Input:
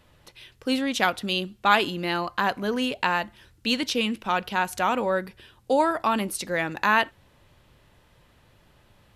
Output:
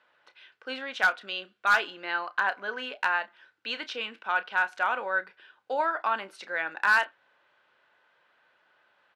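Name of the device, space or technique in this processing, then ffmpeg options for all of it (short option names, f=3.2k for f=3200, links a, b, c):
megaphone: -filter_complex "[0:a]asettb=1/sr,asplit=3[a][b][c];[a]atrim=end=1.154[d];[b]atrim=start=1.15:end=1.74,asetpts=PTS-STARTPTS,afade=t=in:d=0.004:c=qsin,afade=t=out:st=0.586:d=0.004:c=qsin,bandreject=f=850:w=5.3[e];[c]atrim=start=1.736[f];[d][e]acrossfade=d=0.004:c1=hsin:c2=qsin[g];[g][f]acrossfade=d=0.004:c1=qsin:c2=hsin,highpass=640,lowpass=3k,equalizer=f=1.5k:t=o:w=0.2:g=11.5,asoftclip=type=hard:threshold=-11dB,asplit=2[h][i];[i]adelay=31,volume=-13dB[j];[h][j]amix=inputs=2:normalize=0,volume=-4dB"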